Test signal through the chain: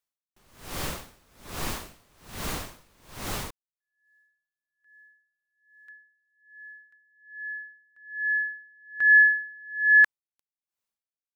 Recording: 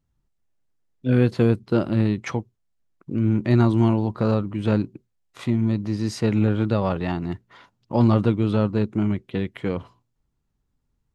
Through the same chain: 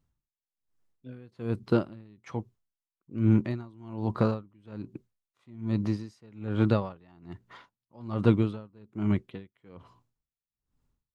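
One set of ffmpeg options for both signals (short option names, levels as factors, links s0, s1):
-af "equalizer=f=1100:w=2.8:g=3,aeval=exprs='val(0)*pow(10,-32*(0.5-0.5*cos(2*PI*1.2*n/s))/20)':c=same"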